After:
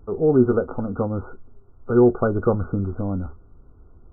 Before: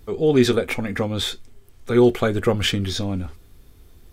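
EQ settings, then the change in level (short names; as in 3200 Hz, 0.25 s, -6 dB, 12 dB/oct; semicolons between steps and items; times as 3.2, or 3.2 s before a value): brick-wall FIR low-pass 1500 Hz; 0.0 dB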